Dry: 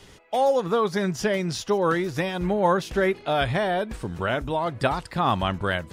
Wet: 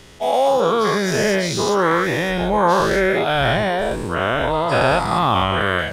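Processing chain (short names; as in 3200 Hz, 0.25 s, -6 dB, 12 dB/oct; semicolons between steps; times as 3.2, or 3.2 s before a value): spectral dilation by 0.24 s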